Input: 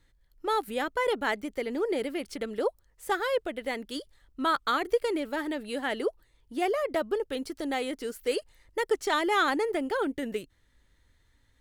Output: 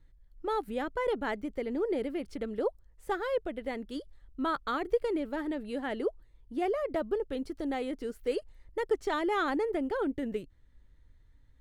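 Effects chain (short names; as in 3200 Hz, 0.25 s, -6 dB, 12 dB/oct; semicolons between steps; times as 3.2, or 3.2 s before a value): tilt -2.5 dB/oct; gain -5 dB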